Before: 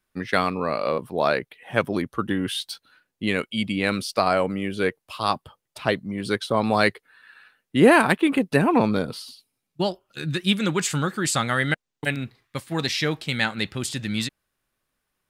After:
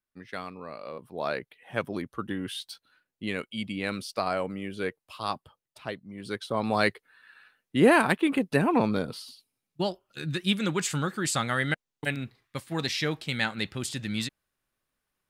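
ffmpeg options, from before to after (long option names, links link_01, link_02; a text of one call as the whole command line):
ffmpeg -i in.wav -af "volume=2dB,afade=type=in:start_time=0.92:duration=0.46:silence=0.421697,afade=type=out:start_time=5.34:duration=0.68:silence=0.473151,afade=type=in:start_time=6.02:duration=0.82:silence=0.316228" out.wav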